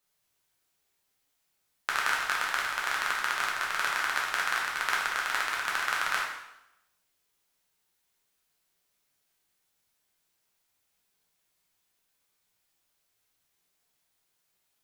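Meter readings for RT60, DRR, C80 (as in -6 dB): 0.85 s, -4.0 dB, 5.0 dB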